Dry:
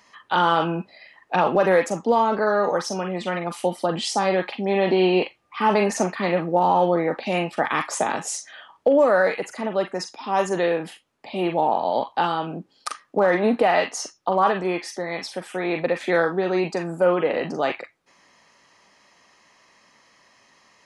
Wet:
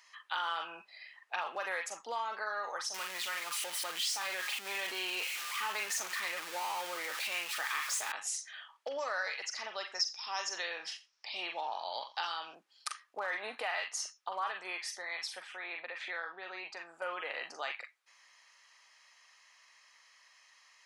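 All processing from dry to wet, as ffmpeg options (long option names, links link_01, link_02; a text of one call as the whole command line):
ffmpeg -i in.wav -filter_complex "[0:a]asettb=1/sr,asplit=3[link_01][link_02][link_03];[link_01]atrim=end=2.944[link_04];[link_02]atrim=start=2.94:end=8.12,asetpts=PTS-STARTPTS,afade=type=in:duration=0.004:curve=qsin,afade=type=out:start_time=5.176:duration=0.004:curve=qsin,aeval=exprs='val(0)+0.5*0.0631*sgn(val(0))':channel_layout=same,equalizer=frequency=720:width_type=o:width=0.73:gain=-6[link_05];[link_03]atrim=start=8.116[link_06];[link_04][link_05]acrossfade=duration=0.004:curve1=hsin:curve2=qsin[link_07];[link_07][link_06]acrossfade=duration=0.004:curve1=qsin:curve2=hsin,asettb=1/sr,asplit=3[link_08][link_09][link_10];[link_08]atrim=end=8.874[link_11];[link_09]atrim=start=8.87:end=12.55,asetpts=PTS-STARTPTS,afade=type=in:duration=0.004:curve=qsin,afade=type=out:start_time=3.676:duration=0.004:curve=qsin,lowpass=frequency=5500:width_type=q:width=9.2,aecho=1:1:87:0.112,atrim=end_sample=162288[link_12];[link_10]atrim=start=12.546[link_13];[link_11][link_12]acrossfade=duration=0.004:curve1=hsin:curve2=qsin[link_14];[link_14][link_13]acrossfade=duration=0.004:curve1=qsin:curve2=hsin,asettb=1/sr,asplit=3[link_15][link_16][link_17];[link_15]atrim=end=15.424[link_18];[link_16]atrim=start=15.42:end=17.02,asetpts=PTS-STARTPTS,afade=type=in:duration=0.004:curve=qsin,afade=type=out:start_time=1.596:duration=0.004:curve=qsin,acompressor=threshold=-32dB:ratio=1.5:attack=3.2:release=140:knee=1:detection=peak,highpass=130,lowpass=4000[link_19];[link_17]atrim=start=17.016[link_20];[link_18][link_19]acrossfade=duration=0.004:curve1=hsin:curve2=qsin[link_21];[link_21][link_20]acrossfade=duration=0.004:curve1=qsin:curve2=hsin,highpass=1400,acompressor=threshold=-33dB:ratio=2,volume=-3.5dB" out.wav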